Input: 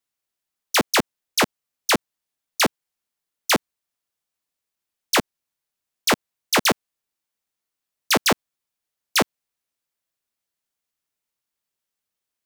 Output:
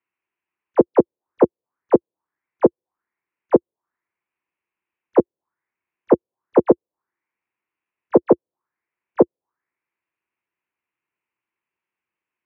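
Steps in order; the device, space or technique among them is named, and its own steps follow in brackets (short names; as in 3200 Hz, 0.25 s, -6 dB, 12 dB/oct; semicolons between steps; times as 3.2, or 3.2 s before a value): envelope filter bass rig (envelope low-pass 510–2600 Hz down, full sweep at -24 dBFS; speaker cabinet 70–2300 Hz, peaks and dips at 350 Hz +9 dB, 620 Hz -3 dB, 990 Hz +7 dB)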